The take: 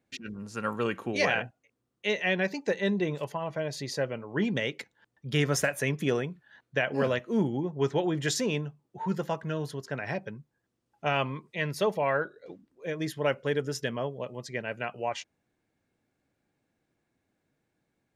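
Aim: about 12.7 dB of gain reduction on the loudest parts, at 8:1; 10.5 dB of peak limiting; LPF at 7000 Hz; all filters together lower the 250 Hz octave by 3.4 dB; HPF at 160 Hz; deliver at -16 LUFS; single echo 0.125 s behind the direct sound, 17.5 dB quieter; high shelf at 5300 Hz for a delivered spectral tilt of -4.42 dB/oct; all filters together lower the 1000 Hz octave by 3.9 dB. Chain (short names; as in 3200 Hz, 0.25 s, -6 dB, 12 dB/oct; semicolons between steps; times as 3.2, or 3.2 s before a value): HPF 160 Hz; LPF 7000 Hz; bell 250 Hz -3 dB; bell 1000 Hz -5.5 dB; high shelf 5300 Hz +3 dB; compressor 8:1, threshold -37 dBFS; limiter -34 dBFS; echo 0.125 s -17.5 dB; gain +29 dB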